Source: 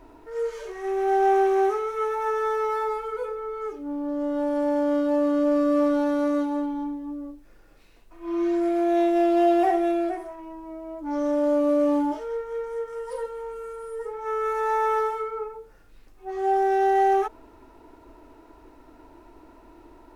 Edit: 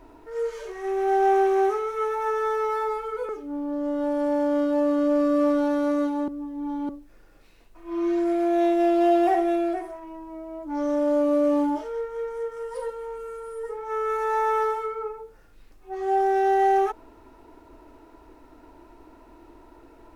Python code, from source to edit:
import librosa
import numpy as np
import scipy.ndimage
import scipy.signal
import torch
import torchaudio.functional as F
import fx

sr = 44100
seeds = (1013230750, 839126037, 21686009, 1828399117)

y = fx.edit(x, sr, fx.cut(start_s=3.29, length_s=0.36),
    fx.reverse_span(start_s=6.64, length_s=0.61), tone=tone)